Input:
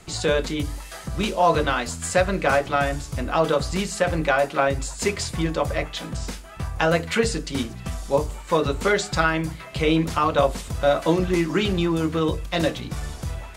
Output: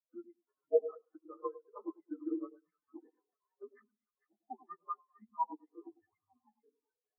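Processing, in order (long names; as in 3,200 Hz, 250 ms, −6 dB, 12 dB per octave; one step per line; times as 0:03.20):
downward compressor 8 to 1, threshold −26 dBFS, peak gain reduction 13 dB
single-sideband voice off tune −240 Hz 580–2,300 Hz
time stretch by overlap-add 0.53×, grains 126 ms
on a send: echo with a time of its own for lows and highs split 1,100 Hz, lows 102 ms, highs 450 ms, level −4 dB
on the sum: every bin expanded away from the loudest bin 4 to 1
level +1 dB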